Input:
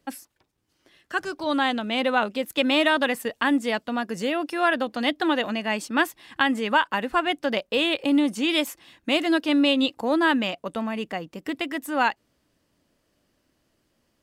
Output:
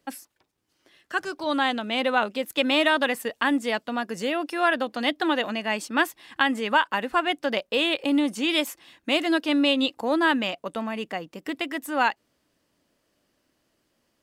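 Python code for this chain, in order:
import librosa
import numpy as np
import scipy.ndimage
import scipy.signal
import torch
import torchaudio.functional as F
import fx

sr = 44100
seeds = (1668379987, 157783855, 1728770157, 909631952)

y = fx.low_shelf(x, sr, hz=160.0, db=-8.0)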